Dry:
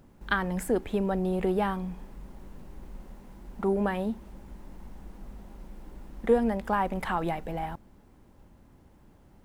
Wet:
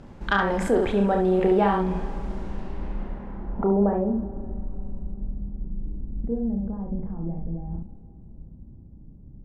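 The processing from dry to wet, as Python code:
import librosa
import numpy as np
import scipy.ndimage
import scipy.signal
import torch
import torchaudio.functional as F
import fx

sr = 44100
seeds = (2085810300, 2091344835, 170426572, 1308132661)

p1 = fx.tracing_dist(x, sr, depth_ms=0.023)
p2 = fx.high_shelf(p1, sr, hz=5800.0, db=-7.5)
p3 = fx.room_early_taps(p2, sr, ms=(30, 70), db=(-5.5, -5.5))
p4 = fx.over_compress(p3, sr, threshold_db=-36.0, ratio=-1.0)
p5 = p3 + (p4 * librosa.db_to_amplitude(-1.0))
p6 = fx.quant_float(p5, sr, bits=6)
p7 = fx.filter_sweep_lowpass(p6, sr, from_hz=6900.0, to_hz=190.0, start_s=2.43, end_s=4.64, q=0.83)
p8 = fx.dynamic_eq(p7, sr, hz=680.0, q=1.0, threshold_db=-41.0, ratio=4.0, max_db=4)
p9 = fx.rev_plate(p8, sr, seeds[0], rt60_s=3.7, hf_ratio=0.8, predelay_ms=0, drr_db=14.0)
y = p9 * librosa.db_to_amplitude(1.5)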